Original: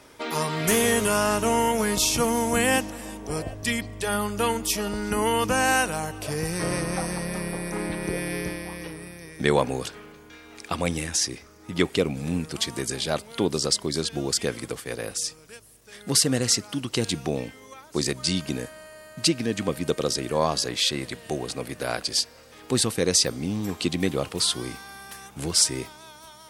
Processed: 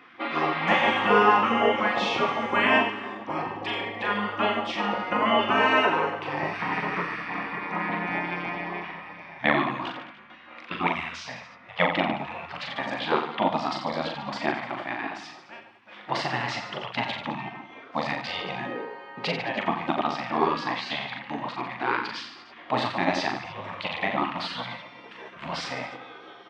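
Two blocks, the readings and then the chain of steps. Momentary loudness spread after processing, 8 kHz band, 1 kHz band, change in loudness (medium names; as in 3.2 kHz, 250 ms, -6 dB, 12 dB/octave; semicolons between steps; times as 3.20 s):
17 LU, -26.0 dB, +5.0 dB, -1.5 dB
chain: cabinet simulation 340–2600 Hz, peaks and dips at 410 Hz +10 dB, 600 Hz +9 dB, 850 Hz +10 dB, 1.5 kHz -6 dB, 2.4 kHz -3 dB; hum notches 50/100/150/200/250/300/350/400/450 Hz; reverse bouncing-ball echo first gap 40 ms, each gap 1.2×, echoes 5; spectral gate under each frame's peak -15 dB weak; trim +7 dB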